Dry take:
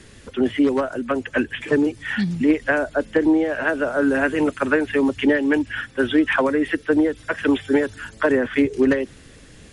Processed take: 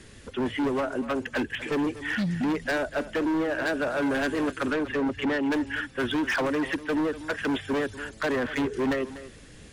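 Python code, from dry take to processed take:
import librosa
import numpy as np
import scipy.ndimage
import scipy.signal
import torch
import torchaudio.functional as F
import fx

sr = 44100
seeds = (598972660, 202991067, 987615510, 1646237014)

y = np.clip(x, -10.0 ** (-20.5 / 20.0), 10.0 ** (-20.5 / 20.0))
y = fx.lowpass(y, sr, hz=fx.line((4.71, 2500.0), (5.5, 3700.0)), slope=6, at=(4.71, 5.5), fade=0.02)
y = y + 10.0 ** (-15.0 / 20.0) * np.pad(y, (int(244 * sr / 1000.0), 0))[:len(y)]
y = y * 10.0 ** (-3.0 / 20.0)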